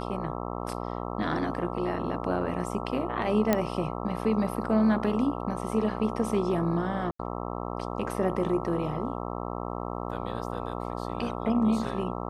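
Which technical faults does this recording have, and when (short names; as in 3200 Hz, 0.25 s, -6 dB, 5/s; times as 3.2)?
buzz 60 Hz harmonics 22 -34 dBFS
3.53 pop -9 dBFS
7.11–7.19 gap 84 ms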